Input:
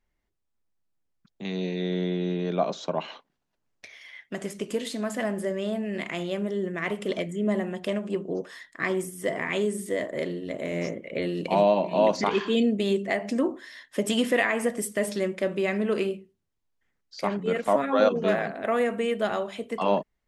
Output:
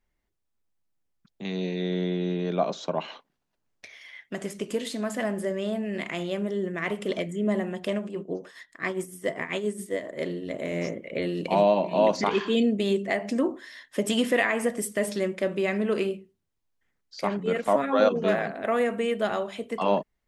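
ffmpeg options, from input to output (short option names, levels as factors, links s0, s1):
-filter_complex "[0:a]asettb=1/sr,asplit=3[s0][s1][s2];[s0]atrim=end=8.064[s3];[s1]atrim=start=8.06:end=10.22,asetpts=PTS-STARTPTS,afade=t=in:d=0.004:c=qsin,afade=t=out:st=2.156:d=0.004:c=qsin,tremolo=f=7.4:d=0.68[s4];[s2]atrim=start=10.216[s5];[s3][s4]acrossfade=d=0.004:c1=hsin:c2=qsin[s6];[s6][s5]acrossfade=d=0.004:c1=qsin:c2=hsin"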